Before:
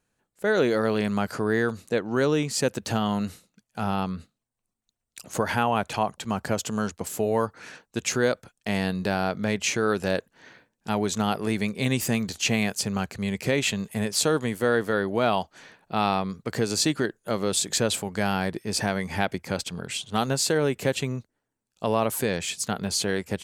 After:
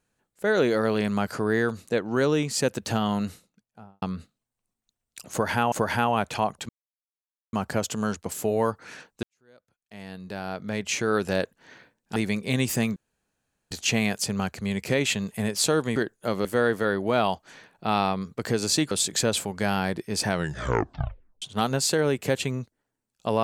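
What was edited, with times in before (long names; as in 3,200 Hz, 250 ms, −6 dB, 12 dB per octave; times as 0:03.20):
0:03.23–0:04.02: fade out and dull
0:05.31–0:05.72: repeat, 2 plays
0:06.28: splice in silence 0.84 s
0:07.98–0:09.89: fade in quadratic
0:10.91–0:11.48: remove
0:12.28: splice in room tone 0.75 s
0:16.99–0:17.48: move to 0:14.53
0:18.85: tape stop 1.14 s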